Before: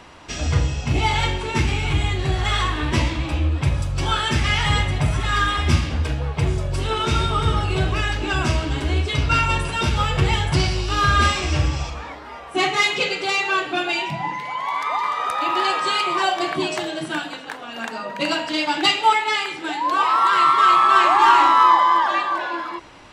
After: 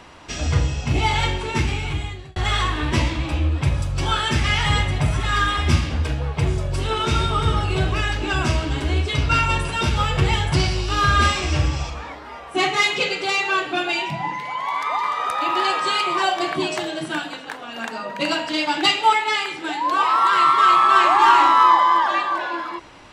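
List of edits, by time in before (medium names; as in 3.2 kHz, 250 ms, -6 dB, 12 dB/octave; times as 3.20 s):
1.28–2.36 s: fade out equal-power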